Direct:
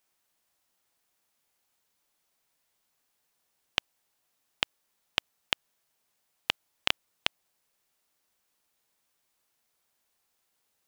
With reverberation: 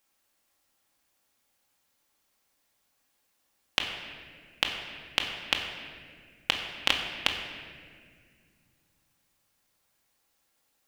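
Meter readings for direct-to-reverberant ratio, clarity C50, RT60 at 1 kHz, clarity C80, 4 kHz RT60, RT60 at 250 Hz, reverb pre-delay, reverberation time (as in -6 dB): 1.0 dB, 4.5 dB, 1.6 s, 6.0 dB, 1.4 s, 3.2 s, 4 ms, 1.9 s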